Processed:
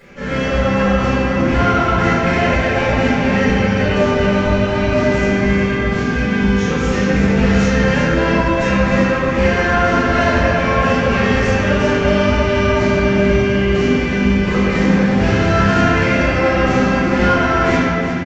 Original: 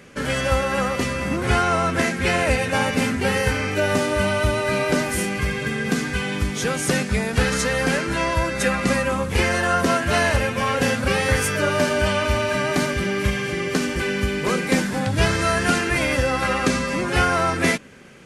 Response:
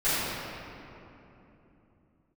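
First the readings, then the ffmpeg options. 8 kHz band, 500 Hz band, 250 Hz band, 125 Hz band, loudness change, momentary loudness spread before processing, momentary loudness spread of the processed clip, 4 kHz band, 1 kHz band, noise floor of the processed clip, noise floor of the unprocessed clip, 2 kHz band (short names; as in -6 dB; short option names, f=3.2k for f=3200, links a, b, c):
-6.0 dB, +6.5 dB, +9.0 dB, +7.5 dB, +6.0 dB, 4 LU, 2 LU, +1.0 dB, +5.5 dB, -18 dBFS, -28 dBFS, +4.0 dB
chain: -filter_complex "[0:a]lowpass=f=3.6k:p=1,acompressor=mode=upward:threshold=-40dB:ratio=2.5,aresample=16000,asoftclip=type=tanh:threshold=-16dB,aresample=44100,aecho=1:1:360:0.376[a];[1:a]atrim=start_sample=2205,asetrate=52920,aresample=44100[b];[a][b]afir=irnorm=-1:irlink=0,volume=-7dB"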